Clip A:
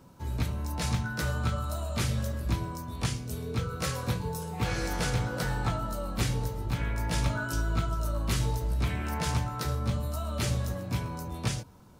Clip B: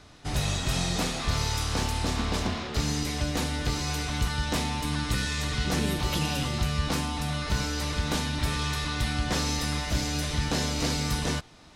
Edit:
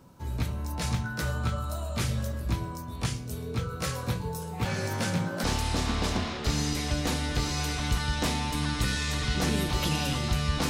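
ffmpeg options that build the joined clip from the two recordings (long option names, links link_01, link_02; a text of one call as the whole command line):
ffmpeg -i cue0.wav -i cue1.wav -filter_complex "[0:a]asettb=1/sr,asplit=3[link_01][link_02][link_03];[link_01]atrim=end=4.654[link_04];[link_02]atrim=start=4.65:end=5.44,asetpts=PTS-STARTPTS,afade=type=in:duration=0.004:curve=qsin,afade=type=out:start_time=0.786:duration=0.004:curve=qsin,afreqshift=53[link_05];[link_03]atrim=start=5.436[link_06];[link_04][link_05]acrossfade=duration=0.004:curve1=hsin:curve2=qsin[link_07];[link_07][link_06]acrossfade=duration=0.004:curve1=qsin:curve2=hsin,apad=whole_dur=10.69,atrim=end=10.69,atrim=end=5.442[link_08];[1:a]atrim=start=1.738:end=6.99[link_09];[link_08][link_09]acrossfade=duration=0.004:curve1=hsin:curve2=hsin" out.wav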